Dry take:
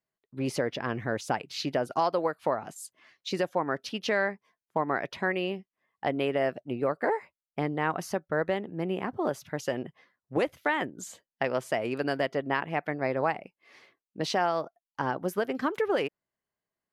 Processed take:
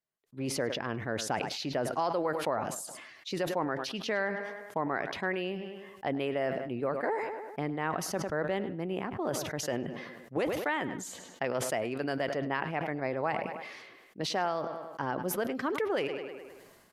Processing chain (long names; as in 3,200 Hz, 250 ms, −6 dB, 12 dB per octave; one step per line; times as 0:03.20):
downsampling to 32,000 Hz
tape delay 103 ms, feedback 38%, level −17.5 dB, low-pass 4,800 Hz
level that may fall only so fast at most 38 dB per second
level −4.5 dB